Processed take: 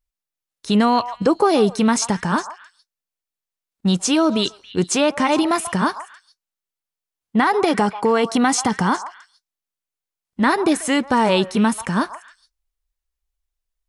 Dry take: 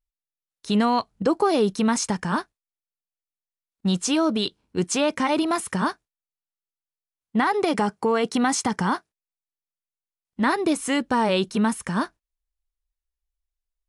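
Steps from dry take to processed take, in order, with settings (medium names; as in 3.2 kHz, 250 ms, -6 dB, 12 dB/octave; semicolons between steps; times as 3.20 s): repeats whose band climbs or falls 138 ms, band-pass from 890 Hz, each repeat 1.4 oct, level -10.5 dB; trim +4.5 dB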